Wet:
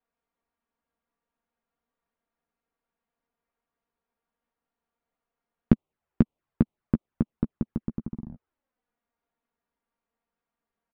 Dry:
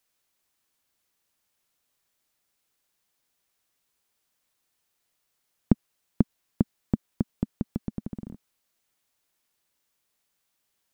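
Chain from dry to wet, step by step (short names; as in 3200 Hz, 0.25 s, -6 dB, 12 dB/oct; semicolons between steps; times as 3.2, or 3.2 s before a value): LPF 1300 Hz 12 dB/oct; envelope flanger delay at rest 4.3 ms, full sweep at -27.5 dBFS; doubler 13 ms -9.5 dB; gain +2 dB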